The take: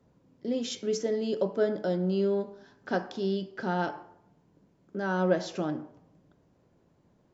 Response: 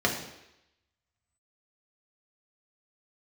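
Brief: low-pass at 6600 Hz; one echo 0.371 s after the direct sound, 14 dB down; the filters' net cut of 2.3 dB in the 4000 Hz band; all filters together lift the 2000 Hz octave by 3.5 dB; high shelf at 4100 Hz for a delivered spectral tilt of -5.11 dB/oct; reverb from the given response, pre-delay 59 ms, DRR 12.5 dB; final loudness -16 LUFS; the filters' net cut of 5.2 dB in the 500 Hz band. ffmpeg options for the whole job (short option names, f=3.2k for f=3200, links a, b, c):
-filter_complex "[0:a]lowpass=6.6k,equalizer=f=500:t=o:g=-7,equalizer=f=2k:t=o:g=6.5,equalizer=f=4k:t=o:g=-6.5,highshelf=f=4.1k:g=3,aecho=1:1:371:0.2,asplit=2[a][b];[1:a]atrim=start_sample=2205,adelay=59[c];[b][c]afir=irnorm=-1:irlink=0,volume=-25.5dB[d];[a][d]amix=inputs=2:normalize=0,volume=16.5dB"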